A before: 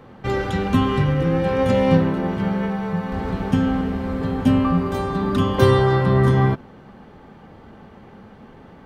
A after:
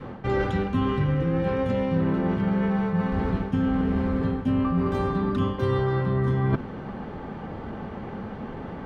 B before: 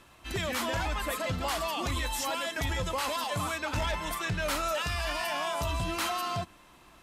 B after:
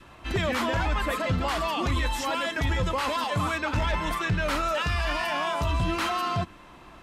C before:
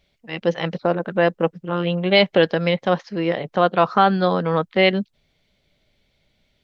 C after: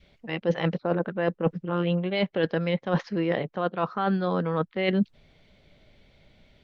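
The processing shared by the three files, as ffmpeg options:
-af "areverse,acompressor=threshold=-29dB:ratio=12,areverse,lowpass=f=2.2k:p=1,adynamicequalizer=threshold=0.00398:dfrequency=700:dqfactor=1.6:tfrequency=700:tqfactor=1.6:attack=5:release=100:ratio=0.375:range=2:mode=cutabove:tftype=bell,volume=9dB"

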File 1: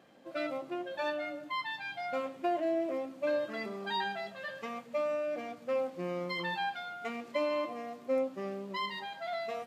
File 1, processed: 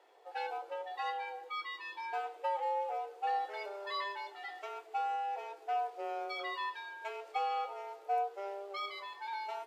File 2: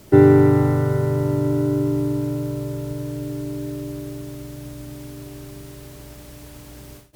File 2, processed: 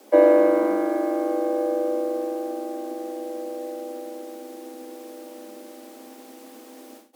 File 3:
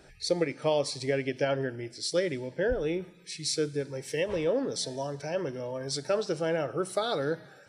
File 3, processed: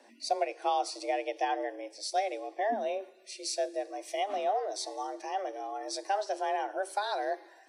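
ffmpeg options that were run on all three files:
-af "equalizer=f=510:w=1.5:g=2.5,afreqshift=200,volume=-4.5dB"

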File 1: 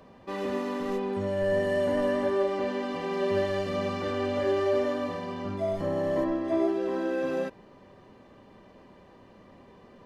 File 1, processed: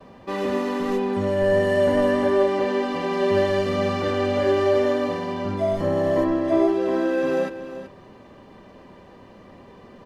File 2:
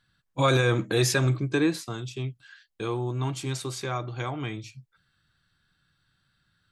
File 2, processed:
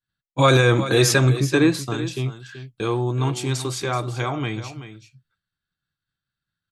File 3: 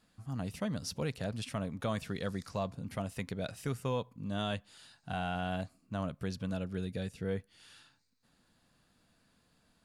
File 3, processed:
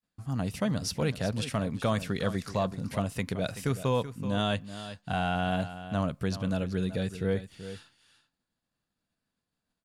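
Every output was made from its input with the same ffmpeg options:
-af "agate=range=-33dB:threshold=-56dB:ratio=3:detection=peak,aecho=1:1:380:0.237,volume=6.5dB"

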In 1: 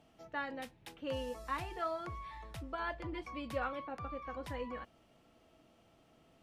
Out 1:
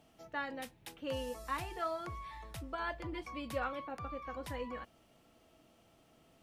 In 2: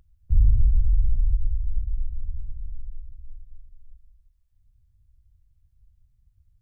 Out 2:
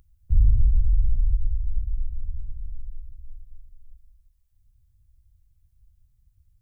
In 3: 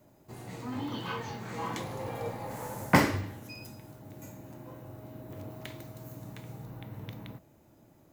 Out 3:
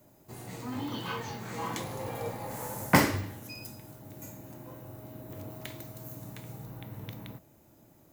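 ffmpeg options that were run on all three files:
-af "highshelf=f=6.7k:g=8.5"

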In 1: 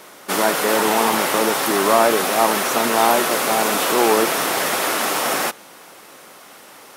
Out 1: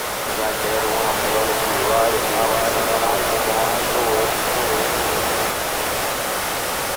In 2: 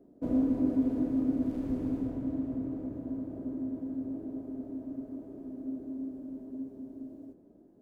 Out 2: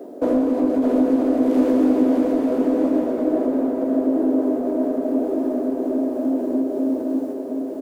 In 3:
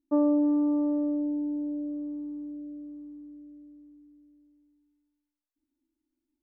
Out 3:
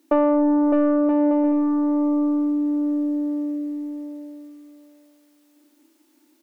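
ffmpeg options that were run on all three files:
-filter_complex "[0:a]highpass=f=200:w=0.5412,highpass=f=200:w=1.3066,equalizer=f=500:t=o:w=1.6:g=9,acompressor=threshold=-36dB:ratio=2.5,crystalizer=i=9:c=0,asplit=2[a][b];[b]highpass=f=720:p=1,volume=34dB,asoftclip=type=tanh:threshold=0dB[c];[a][c]amix=inputs=2:normalize=0,lowpass=f=1k:p=1,volume=-6dB,asplit=2[d][e];[e]adelay=16,volume=-11dB[f];[d][f]amix=inputs=2:normalize=0,aecho=1:1:610|976|1196|1327|1406:0.631|0.398|0.251|0.158|0.1,volume=-5dB"

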